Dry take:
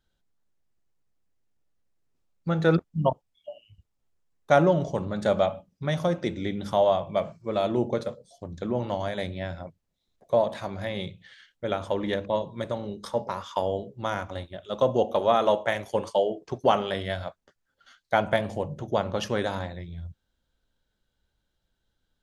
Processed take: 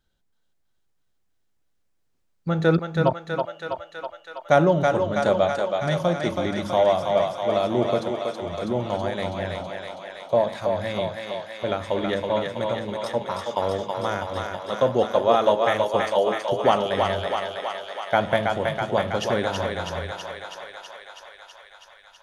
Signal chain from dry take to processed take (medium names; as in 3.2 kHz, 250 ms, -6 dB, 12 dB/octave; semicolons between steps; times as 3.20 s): thinning echo 325 ms, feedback 77%, high-pass 430 Hz, level -3 dB; trim +2 dB